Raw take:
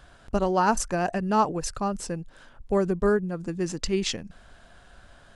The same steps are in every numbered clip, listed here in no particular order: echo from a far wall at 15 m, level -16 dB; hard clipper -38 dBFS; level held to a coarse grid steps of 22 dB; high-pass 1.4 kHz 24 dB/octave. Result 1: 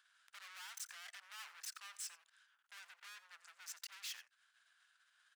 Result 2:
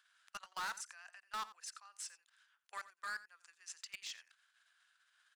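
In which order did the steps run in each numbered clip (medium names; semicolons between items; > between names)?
hard clipper > echo from a far wall > level held to a coarse grid > high-pass; level held to a coarse grid > high-pass > hard clipper > echo from a far wall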